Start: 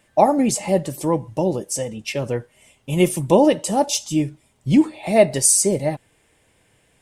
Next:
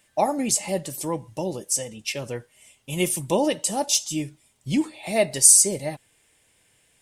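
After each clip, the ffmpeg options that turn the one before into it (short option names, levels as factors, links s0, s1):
-af "highshelf=f=2100:g=11.5,volume=0.376"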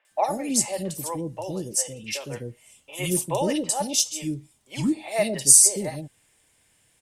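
-filter_complex "[0:a]acrossover=split=470|2600[s0][s1][s2];[s2]adelay=50[s3];[s0]adelay=110[s4];[s4][s1][s3]amix=inputs=3:normalize=0"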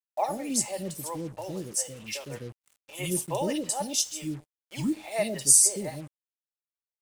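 -af "acrusher=bits=6:mix=0:aa=0.5,volume=0.596"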